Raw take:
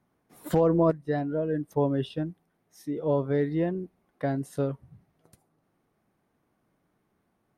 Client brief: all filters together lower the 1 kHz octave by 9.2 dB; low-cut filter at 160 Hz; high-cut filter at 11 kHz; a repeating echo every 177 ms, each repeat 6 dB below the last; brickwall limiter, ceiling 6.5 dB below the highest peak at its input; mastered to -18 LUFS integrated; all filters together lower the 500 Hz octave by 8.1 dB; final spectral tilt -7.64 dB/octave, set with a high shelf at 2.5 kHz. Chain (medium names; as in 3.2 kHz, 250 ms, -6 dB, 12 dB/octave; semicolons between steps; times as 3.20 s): high-pass 160 Hz; low-pass 11 kHz; peaking EQ 500 Hz -7.5 dB; peaking EQ 1 kHz -8 dB; treble shelf 2.5 kHz -7.5 dB; peak limiter -23 dBFS; feedback delay 177 ms, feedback 50%, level -6 dB; trim +16.5 dB